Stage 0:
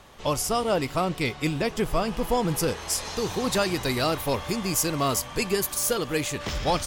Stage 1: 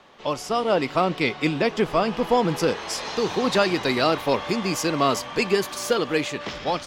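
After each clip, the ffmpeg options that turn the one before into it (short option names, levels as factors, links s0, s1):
-filter_complex "[0:a]acrossover=split=160 5400:gain=0.141 1 0.126[s0][s1][s2];[s0][s1][s2]amix=inputs=3:normalize=0,dynaudnorm=f=100:g=13:m=1.78"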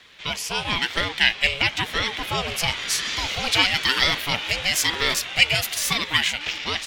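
-af "crystalizer=i=5:c=0,equalizer=f=2600:t=o:w=0.81:g=14.5,aeval=exprs='val(0)*sin(2*PI*470*n/s+470*0.45/1*sin(2*PI*1*n/s))':c=same,volume=0.501"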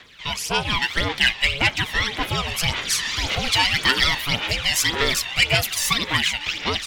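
-filter_complex "[0:a]aphaser=in_gain=1:out_gain=1:delay=1.1:decay=0.56:speed=1.8:type=sinusoidal,acrossover=split=5900[s0][s1];[s0]asoftclip=type=tanh:threshold=0.422[s2];[s2][s1]amix=inputs=2:normalize=0"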